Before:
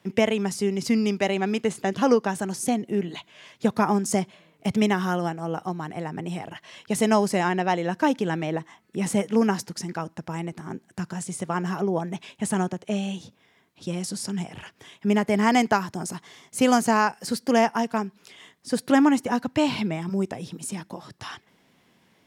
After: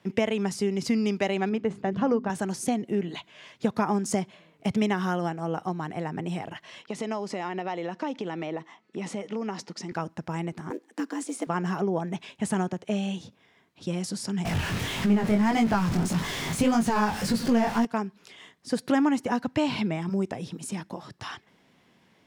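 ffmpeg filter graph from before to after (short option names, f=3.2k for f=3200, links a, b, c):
-filter_complex "[0:a]asettb=1/sr,asplit=3[a][b][c];[a]atrim=end=1.494[d];[b]atrim=start=1.49:end=2.3,asetpts=PTS-STARTPTS,afade=t=in:d=0.004:c=qsin,afade=t=out:st=0.806:d=0.004:c=qsin,lowpass=f=1.2k:p=1,bandreject=f=50:t=h:w=6,bandreject=f=100:t=h:w=6,bandreject=f=150:t=h:w=6,bandreject=f=200:t=h:w=6,bandreject=f=250:t=h:w=6,bandreject=f=300:t=h:w=6,bandreject=f=350:t=h:w=6,bandreject=f=400:t=h:w=6,asubboost=boost=6.5:cutoff=240[e];[c]atrim=start=2.296[f];[d][e]acrossfade=d=0.004:c1=hsin:c2=qsin[g];[g][f]acrossfade=d=0.004:c1=qsin:c2=hsin,asettb=1/sr,asplit=3[h][i][j];[h]atrim=end=6.824[k];[i]atrim=start=6.82:end=9.92,asetpts=PTS-STARTPTS,afade=t=in:d=0.004:c=qsin,afade=t=out:st=3.096:d=0.004:c=qsin,bandreject=f=1.6k:w=8.6,acompressor=threshold=-26dB:ratio=5:attack=3.2:release=140:knee=1:detection=peak,highpass=220,lowpass=6k[l];[j]atrim=start=9.916[m];[k][l]acrossfade=d=0.004:c1=hsin:c2=qsin[n];[n][m]acrossfade=d=0.004:c1=qsin:c2=hsin,asettb=1/sr,asplit=3[o][p][q];[o]atrim=end=10.704[r];[p]atrim=start=10.7:end=11.47,asetpts=PTS-STARTPTS,afade=t=in:d=0.004:c=qsin,afade=t=out:st=0.766:d=0.004:c=qsin,acrusher=bits=7:mode=log:mix=0:aa=0.000001,afreqshift=110[s];[q]atrim=start=11.466[t];[r][s]acrossfade=d=0.004:c1=hsin:c2=qsin[u];[u][t]acrossfade=d=0.004:c1=qsin:c2=hsin,asettb=1/sr,asplit=3[v][w][x];[v]atrim=end=14.454[y];[w]atrim=start=14.45:end=17.85,asetpts=PTS-STARTPTS,afade=t=in:d=0.004:c=qsin,afade=t=out:st=3.396:d=0.004:c=qsin,aeval=exprs='val(0)+0.5*0.0708*sgn(val(0))':c=same,bass=f=250:g=9,treble=f=4k:g=-1,flanger=delay=17.5:depth=6.7:speed=1.7[z];[x]atrim=start=17.846[aa];[y][z]acrossfade=d=0.004:c1=hsin:c2=qsin[ab];[ab][aa]acrossfade=d=0.004:c1=qsin:c2=hsin,highshelf=f=9.2k:g=-9.5,acompressor=threshold=-23dB:ratio=2"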